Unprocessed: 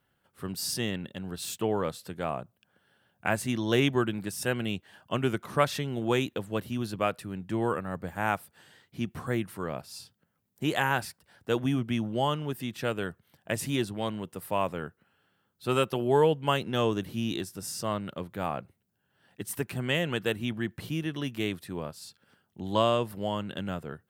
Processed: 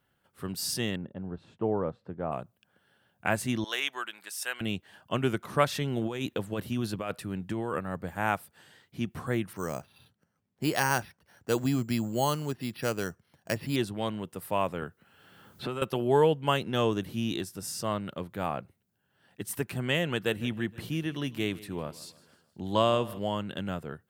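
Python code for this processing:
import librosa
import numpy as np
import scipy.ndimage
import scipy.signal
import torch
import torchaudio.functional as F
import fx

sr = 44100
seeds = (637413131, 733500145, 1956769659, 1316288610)

y = fx.lowpass(x, sr, hz=1000.0, slope=12, at=(0.96, 2.32))
y = fx.highpass(y, sr, hz=1100.0, slope=12, at=(3.64, 4.61))
y = fx.over_compress(y, sr, threshold_db=-31.0, ratio=-1.0, at=(5.81, 7.79))
y = fx.resample_bad(y, sr, factor=6, down='filtered', up='hold', at=(9.53, 13.76))
y = fx.band_squash(y, sr, depth_pct=100, at=(14.82, 15.82))
y = fx.echo_feedback(y, sr, ms=156, feedback_pct=48, wet_db=-19.0, at=(20.3, 23.18), fade=0.02)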